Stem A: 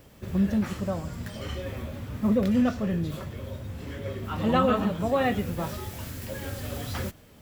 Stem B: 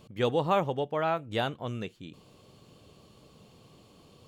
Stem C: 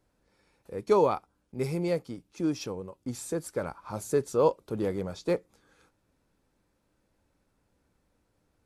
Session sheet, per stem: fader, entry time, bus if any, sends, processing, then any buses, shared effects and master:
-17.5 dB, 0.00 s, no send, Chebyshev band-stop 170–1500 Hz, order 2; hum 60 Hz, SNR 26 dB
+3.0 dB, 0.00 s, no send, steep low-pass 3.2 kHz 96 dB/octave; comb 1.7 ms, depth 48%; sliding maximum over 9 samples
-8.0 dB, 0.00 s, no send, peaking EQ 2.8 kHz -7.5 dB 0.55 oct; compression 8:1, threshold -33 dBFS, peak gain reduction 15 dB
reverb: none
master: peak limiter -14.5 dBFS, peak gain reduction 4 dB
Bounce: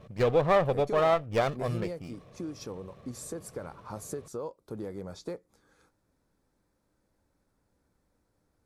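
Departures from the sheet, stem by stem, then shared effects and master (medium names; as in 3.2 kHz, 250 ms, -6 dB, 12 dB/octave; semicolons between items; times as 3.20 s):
stem A: muted; stem C -8.0 dB -> -1.5 dB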